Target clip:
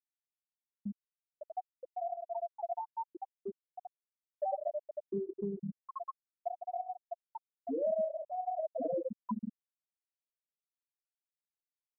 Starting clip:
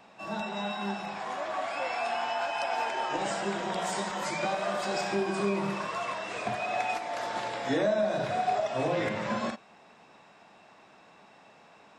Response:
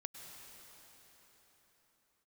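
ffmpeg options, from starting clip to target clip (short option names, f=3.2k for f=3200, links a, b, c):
-af "afftfilt=real='re*gte(hypot(re,im),0.251)':imag='im*gte(hypot(re,im),0.251)':win_size=1024:overlap=0.75,acompressor=threshold=-47dB:ratio=2.5,aphaser=in_gain=1:out_gain=1:delay=3.2:decay=0.28:speed=0.22:type=sinusoidal,volume=7.5dB"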